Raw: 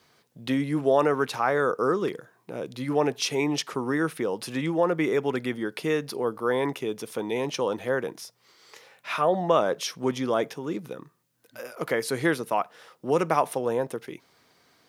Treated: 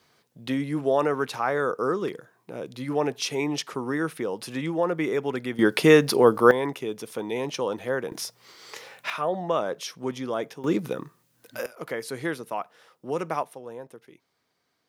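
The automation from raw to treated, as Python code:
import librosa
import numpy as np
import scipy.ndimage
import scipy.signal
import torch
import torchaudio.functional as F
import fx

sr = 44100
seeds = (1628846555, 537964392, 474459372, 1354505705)

y = fx.gain(x, sr, db=fx.steps((0.0, -1.5), (5.59, 10.5), (6.51, -1.0), (8.12, 8.0), (9.1, -4.0), (10.64, 7.0), (11.66, -5.5), (13.43, -13.0)))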